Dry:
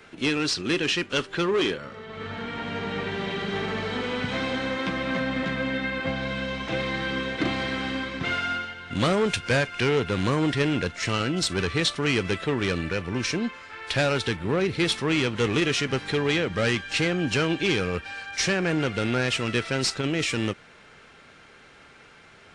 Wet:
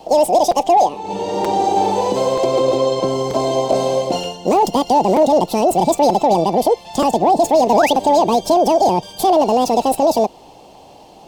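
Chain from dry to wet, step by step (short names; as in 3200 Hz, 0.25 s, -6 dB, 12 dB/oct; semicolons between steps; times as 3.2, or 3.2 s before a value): resonant low shelf 530 Hz +11.5 dB, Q 3; limiter -6 dBFS, peak gain reduction 7.5 dB; painted sound rise, 15.53–15.85, 450–1900 Hz -22 dBFS; speed mistake 7.5 ips tape played at 15 ips; crackling interface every 0.93 s, samples 256, repeat, from 0.51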